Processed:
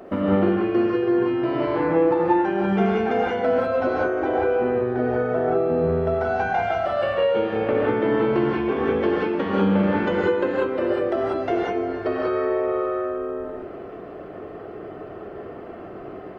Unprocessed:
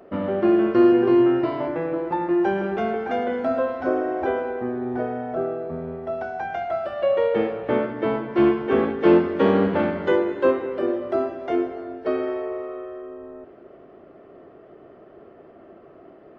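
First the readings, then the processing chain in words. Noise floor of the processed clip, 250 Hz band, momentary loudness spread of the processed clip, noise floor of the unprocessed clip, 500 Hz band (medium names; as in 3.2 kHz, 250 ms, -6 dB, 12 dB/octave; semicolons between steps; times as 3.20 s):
-38 dBFS, -0.5 dB, 17 LU, -48 dBFS, +1.0 dB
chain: compression 12:1, threshold -28 dBFS, peak gain reduction 17.5 dB; gated-style reverb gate 220 ms rising, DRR -4.5 dB; trim +6 dB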